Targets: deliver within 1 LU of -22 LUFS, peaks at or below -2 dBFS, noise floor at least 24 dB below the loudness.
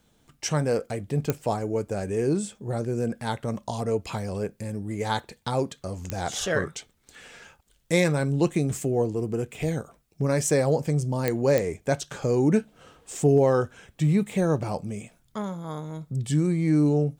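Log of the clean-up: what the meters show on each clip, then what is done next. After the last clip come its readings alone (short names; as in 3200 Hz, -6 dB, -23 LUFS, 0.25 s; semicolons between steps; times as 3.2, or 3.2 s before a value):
clicks 4; loudness -26.5 LUFS; peak -7.0 dBFS; loudness target -22.0 LUFS
-> de-click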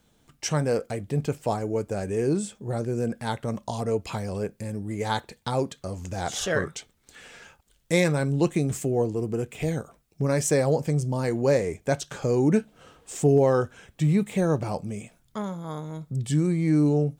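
clicks 0; loudness -26.5 LUFS; peak -10.5 dBFS; loudness target -22.0 LUFS
-> gain +4.5 dB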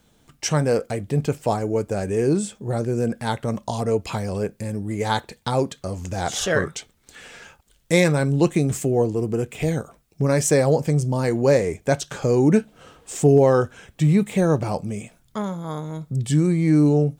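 loudness -22.0 LUFS; peak -6.0 dBFS; noise floor -60 dBFS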